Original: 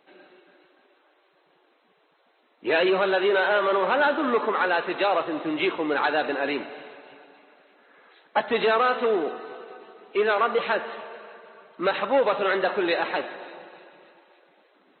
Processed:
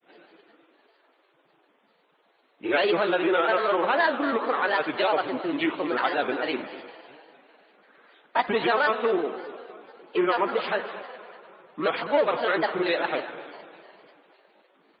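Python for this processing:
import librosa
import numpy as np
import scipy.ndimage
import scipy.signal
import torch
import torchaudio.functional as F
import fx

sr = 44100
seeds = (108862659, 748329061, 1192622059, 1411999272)

p1 = fx.granulator(x, sr, seeds[0], grain_ms=100.0, per_s=20.0, spray_ms=22.0, spread_st=3)
y = p1 + fx.echo_single(p1, sr, ms=235, db=-16.5, dry=0)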